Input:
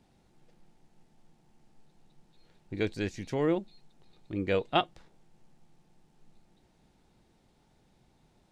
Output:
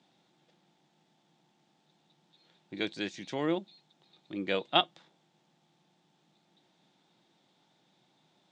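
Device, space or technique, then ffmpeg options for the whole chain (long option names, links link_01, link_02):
television speaker: -af "highpass=frequency=170:width=0.5412,highpass=frequency=170:width=1.3066,equalizer=frequency=230:width_type=q:width=4:gain=-7,equalizer=frequency=440:width_type=q:width=4:gain=-7,equalizer=frequency=3500:width_type=q:width=4:gain=9,lowpass=frequency=7600:width=0.5412,lowpass=frequency=7600:width=1.3066"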